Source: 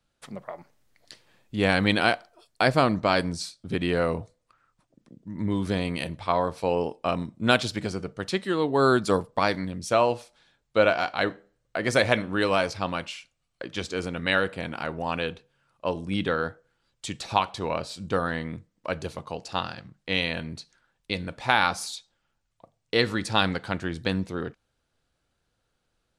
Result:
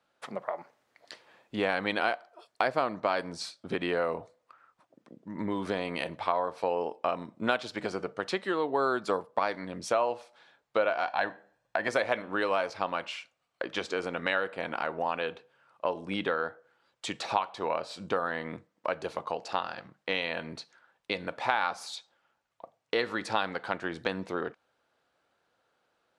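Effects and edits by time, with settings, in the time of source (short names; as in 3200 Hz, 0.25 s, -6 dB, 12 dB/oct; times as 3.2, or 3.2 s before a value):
11.07–11.88 comb 1.2 ms, depth 58%
whole clip: HPF 760 Hz 12 dB/oct; tilt -4.5 dB/oct; compressor 2.5:1, threshold -38 dBFS; gain +8.5 dB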